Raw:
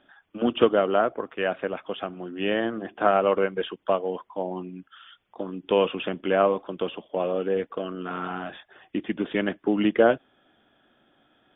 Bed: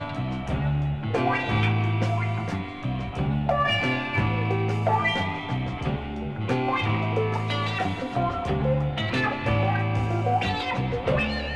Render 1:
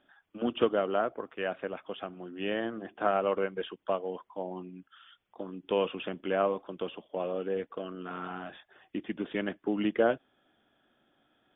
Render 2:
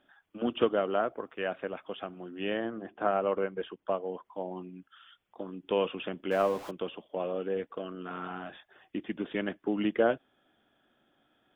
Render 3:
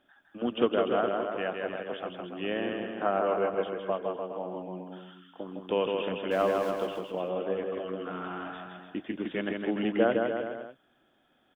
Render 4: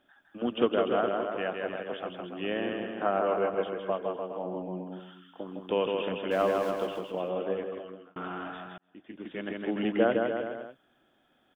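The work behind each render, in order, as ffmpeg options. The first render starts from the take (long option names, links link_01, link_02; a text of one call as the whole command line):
ffmpeg -i in.wav -af "volume=-7dB" out.wav
ffmpeg -i in.wav -filter_complex "[0:a]asettb=1/sr,asplit=3[link_01][link_02][link_03];[link_01]atrim=end=2.574[link_04];[link_02]atrim=start=2.57:end=4.25,asetpts=PTS-STARTPTS,afade=type=in:duration=0.004:curve=qsin,afade=type=out:start_time=1.676:duration=0.004:curve=qsin,lowpass=frequency=2000:poles=1[link_05];[link_03]atrim=start=4.246[link_06];[link_04][link_05]acrossfade=duration=0.004:curve1=hsin:curve2=qsin[link_07];[link_07][link_06]acrossfade=duration=0.004:curve1=qsin:curve2=hsin,asettb=1/sr,asplit=3[link_08][link_09][link_10];[link_08]atrim=end=6.314[link_11];[link_09]atrim=start=6.31:end=6.71,asetpts=PTS-STARTPTS,afade=type=in:duration=0.004:curve=qsin,afade=type=out:start_time=0.396:duration=0.004:curve=qsin,aeval=exprs='val(0)+0.5*0.01*sgn(val(0))':channel_layout=same[link_12];[link_10]atrim=start=6.706[link_13];[link_11][link_12]acrossfade=duration=0.004:curve1=hsin:curve2=qsin[link_14];[link_14][link_13]acrossfade=duration=0.004:curve1=qsin:curve2=hsin" out.wav
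ffmpeg -i in.wav -af "aecho=1:1:160|296|411.6|509.9|593.4:0.631|0.398|0.251|0.158|0.1" out.wav
ffmpeg -i in.wav -filter_complex "[0:a]asettb=1/sr,asplit=3[link_01][link_02][link_03];[link_01]atrim=end=4.434[link_04];[link_02]atrim=start=4.43:end=5,asetpts=PTS-STARTPTS,afade=type=in:duration=0.004:curve=qsin,afade=type=out:start_time=0.566:duration=0.004:curve=qsin,tiltshelf=frequency=820:gain=4[link_05];[link_03]atrim=start=4.996[link_06];[link_04][link_05]acrossfade=duration=0.004:curve1=hsin:curve2=qsin[link_07];[link_07][link_06]acrossfade=duration=0.004:curve1=qsin:curve2=hsin,asplit=3[link_08][link_09][link_10];[link_08]atrim=end=8.16,asetpts=PTS-STARTPTS,afade=type=out:start_time=7.51:duration=0.65[link_11];[link_09]atrim=start=8.16:end=8.78,asetpts=PTS-STARTPTS,afade=type=in:duration=0.004:curve=hsin,afade=type=out:start_time=0.616:duration=0.004:curve=hsin[link_12];[link_10]atrim=start=8.78,asetpts=PTS-STARTPTS,afade=type=in:duration=1.07[link_13];[link_11][link_12][link_13]concat=n=3:v=0:a=1" out.wav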